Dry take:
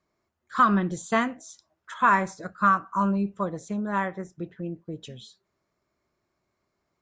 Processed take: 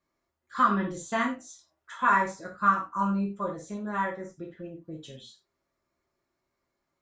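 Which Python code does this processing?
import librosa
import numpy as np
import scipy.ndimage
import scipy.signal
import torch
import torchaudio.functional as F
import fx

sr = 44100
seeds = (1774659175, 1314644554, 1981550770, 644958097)

y = fx.rev_gated(x, sr, seeds[0], gate_ms=120, shape='falling', drr_db=-1.5)
y = y * 10.0 ** (-6.5 / 20.0)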